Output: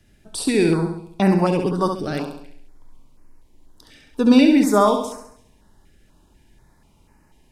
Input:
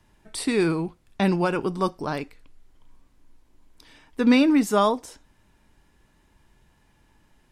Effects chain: on a send: flutter echo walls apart 11.6 m, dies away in 0.7 s; on the sum: stepped notch 4.1 Hz 990–3400 Hz; gain +4 dB

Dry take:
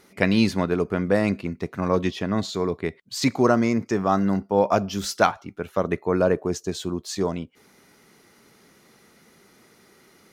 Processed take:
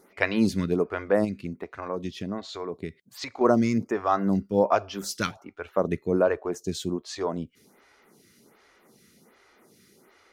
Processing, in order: 1.24–3.41 compressor 4:1, threshold -27 dBFS, peak gain reduction 10 dB; photocell phaser 1.3 Hz

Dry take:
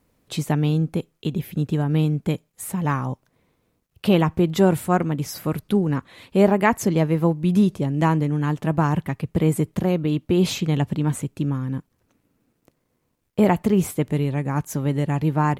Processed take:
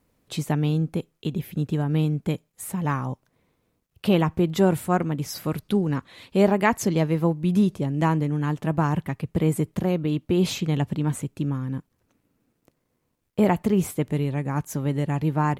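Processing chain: 5.3–7.22 bell 4500 Hz +4 dB 1.4 oct; gain -2.5 dB

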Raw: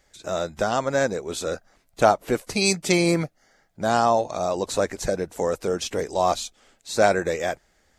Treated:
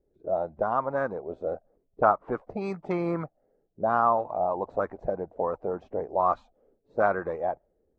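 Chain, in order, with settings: envelope low-pass 390–1200 Hz up, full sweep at -18 dBFS; gain -8.5 dB

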